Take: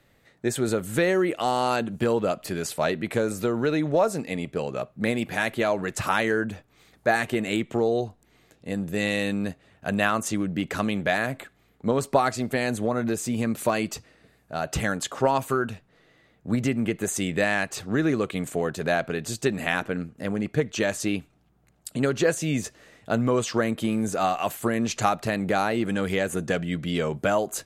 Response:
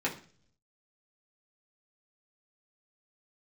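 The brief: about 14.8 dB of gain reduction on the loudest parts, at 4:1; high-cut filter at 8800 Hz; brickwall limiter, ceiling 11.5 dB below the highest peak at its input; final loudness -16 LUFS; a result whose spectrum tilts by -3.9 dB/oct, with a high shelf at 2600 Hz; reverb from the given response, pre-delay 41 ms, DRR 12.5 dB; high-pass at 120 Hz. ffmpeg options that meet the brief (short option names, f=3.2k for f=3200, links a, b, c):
-filter_complex "[0:a]highpass=120,lowpass=8.8k,highshelf=f=2.6k:g=7.5,acompressor=threshold=-35dB:ratio=4,alimiter=level_in=4dB:limit=-24dB:level=0:latency=1,volume=-4dB,asplit=2[a][b];[1:a]atrim=start_sample=2205,adelay=41[c];[b][c]afir=irnorm=-1:irlink=0,volume=-20dB[d];[a][d]amix=inputs=2:normalize=0,volume=23.5dB"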